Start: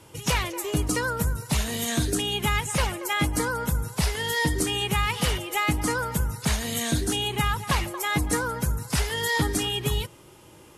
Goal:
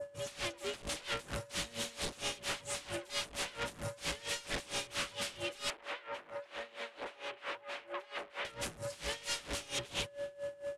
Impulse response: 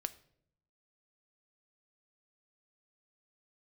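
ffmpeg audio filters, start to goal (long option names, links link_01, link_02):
-filter_complex "[0:a]aeval=exprs='(mod(15*val(0)+1,2)-1)/15':channel_layout=same,aeval=exprs='val(0)+0.0224*sin(2*PI*570*n/s)':channel_layout=same,asoftclip=type=tanh:threshold=-36.5dB,asplit=2[link_01][link_02];[link_02]adelay=285.7,volume=-21dB,highshelf=frequency=4000:gain=-6.43[link_03];[link_01][link_03]amix=inputs=2:normalize=0,adynamicequalizer=threshold=0.00355:dfrequency=3000:dqfactor=0.93:tfrequency=3000:tqfactor=0.93:attack=5:release=100:ratio=0.375:range=3:mode=boostabove:tftype=bell,lowpass=frequency=10000:width=0.5412,lowpass=frequency=10000:width=1.3066,asettb=1/sr,asplit=3[link_04][link_05][link_06];[link_04]atrim=end=5.704[link_07];[link_05]atrim=start=5.7:end=8.45,asetpts=PTS-STARTPTS,afade=type=in:duration=0.004:curve=qsin,afade=type=out:start_time=2.746:duration=0.004:curve=qsin,acrossover=split=340 2900:gain=0.0631 1 0.0708[link_08][link_09][link_10];[link_08][link_09][link_10]amix=inputs=3:normalize=0[link_11];[link_06]atrim=start=8.446[link_12];[link_07][link_11]acrossfade=duration=0.004:curve1=hsin:curve2=qsin[link_13];[link_13][link_12]acrossfade=duration=0.004:curve1=qsin:curve2=hsin,aeval=exprs='val(0)*pow(10,-20*(0.5-0.5*cos(2*PI*4.4*n/s))/20)':channel_layout=same,volume=1.5dB"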